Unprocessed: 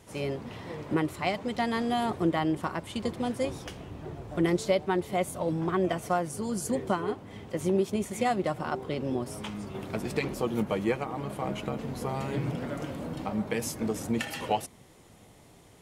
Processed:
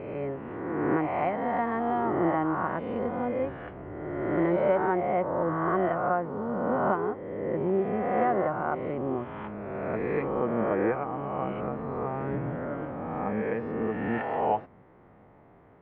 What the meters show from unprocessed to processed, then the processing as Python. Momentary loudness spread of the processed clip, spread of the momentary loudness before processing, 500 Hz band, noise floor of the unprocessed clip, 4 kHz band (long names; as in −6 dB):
8 LU, 9 LU, +3.0 dB, −55 dBFS, below −15 dB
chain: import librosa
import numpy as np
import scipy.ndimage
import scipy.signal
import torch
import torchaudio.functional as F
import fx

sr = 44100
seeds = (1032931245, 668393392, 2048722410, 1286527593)

y = fx.spec_swells(x, sr, rise_s=1.69)
y = scipy.signal.sosfilt(scipy.signal.cheby2(4, 70, 7100.0, 'lowpass', fs=sr, output='sos'), y)
y = fx.low_shelf(y, sr, hz=250.0, db=-6.0)